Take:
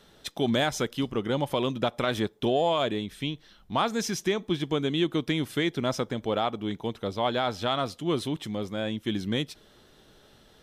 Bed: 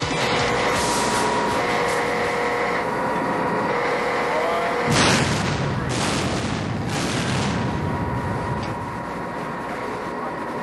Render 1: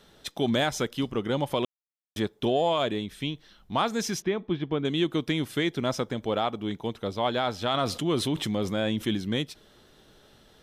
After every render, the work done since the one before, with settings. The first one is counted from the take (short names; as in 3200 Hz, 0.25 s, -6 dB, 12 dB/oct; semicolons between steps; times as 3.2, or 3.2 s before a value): 1.65–2.16 mute; 4.22–4.85 air absorption 320 m; 7.74–9.15 fast leveller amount 50%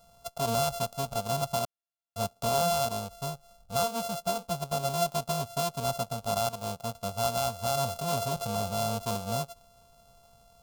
sample sorter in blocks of 64 samples; fixed phaser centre 780 Hz, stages 4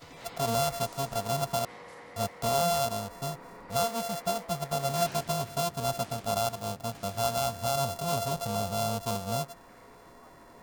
add bed -26 dB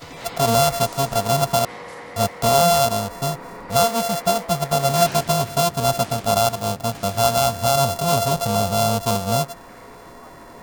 gain +11 dB